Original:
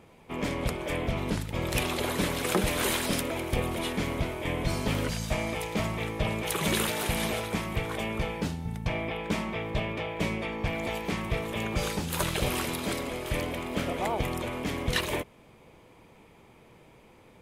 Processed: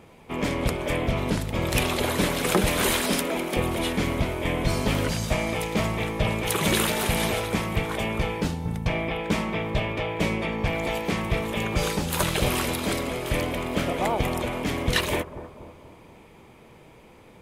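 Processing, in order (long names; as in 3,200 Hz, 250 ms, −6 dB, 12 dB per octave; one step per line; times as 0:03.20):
0:03.00–0:03.57: Butterworth high-pass 160 Hz 48 dB per octave
bucket-brigade delay 241 ms, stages 2,048, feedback 52%, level −12.5 dB
level +4.5 dB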